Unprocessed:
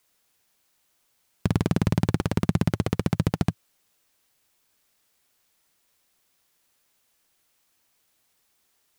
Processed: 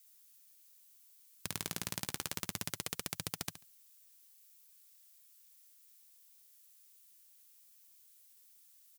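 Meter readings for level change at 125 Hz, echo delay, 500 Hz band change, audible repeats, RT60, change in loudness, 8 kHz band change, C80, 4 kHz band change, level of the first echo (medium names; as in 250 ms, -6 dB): -25.0 dB, 70 ms, -19.0 dB, 2, no reverb, -14.0 dB, +4.0 dB, no reverb, -2.0 dB, -13.0 dB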